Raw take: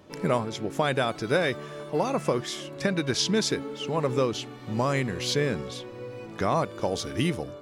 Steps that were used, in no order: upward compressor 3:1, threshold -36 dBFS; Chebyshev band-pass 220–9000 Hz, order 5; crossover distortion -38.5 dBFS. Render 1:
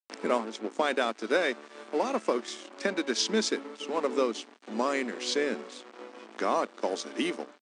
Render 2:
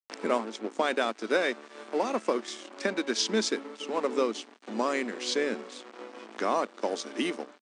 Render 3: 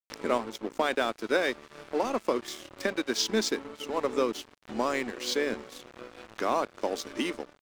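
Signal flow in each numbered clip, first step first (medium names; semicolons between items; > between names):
crossover distortion > upward compressor > Chebyshev band-pass; crossover distortion > Chebyshev band-pass > upward compressor; Chebyshev band-pass > crossover distortion > upward compressor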